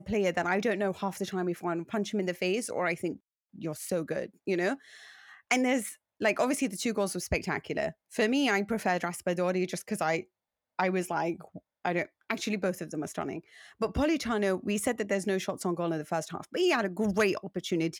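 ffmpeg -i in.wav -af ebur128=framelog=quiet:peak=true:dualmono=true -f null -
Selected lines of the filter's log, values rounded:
Integrated loudness:
  I:         -27.7 LUFS
  Threshold: -38.0 LUFS
Loudness range:
  LRA:         3.4 LU
  Threshold: -48.2 LUFS
  LRA low:   -30.1 LUFS
  LRA high:  -26.7 LUFS
True peak:
  Peak:      -10.8 dBFS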